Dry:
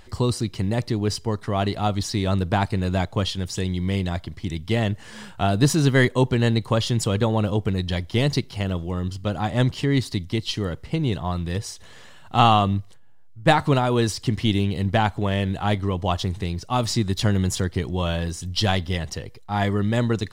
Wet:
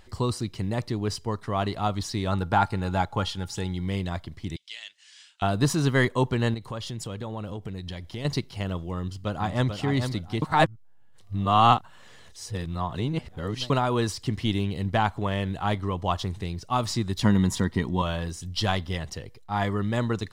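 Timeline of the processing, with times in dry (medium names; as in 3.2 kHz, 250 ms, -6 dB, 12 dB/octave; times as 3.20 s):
2.32–3.86 s: small resonant body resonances 840/1400 Hz, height 15 dB, ringing for 85 ms
4.56–5.42 s: Butterworth band-pass 4.6 kHz, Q 0.85
6.54–8.25 s: compression 4:1, threshold -27 dBFS
8.96–9.70 s: echo throw 440 ms, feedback 30%, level -6.5 dB
10.42–13.70 s: reverse
17.23–18.02 s: small resonant body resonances 220/950/1900/3700 Hz, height 10 dB, ringing for 30 ms
whole clip: dynamic bell 1.1 kHz, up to +6 dB, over -40 dBFS, Q 1.8; trim -5 dB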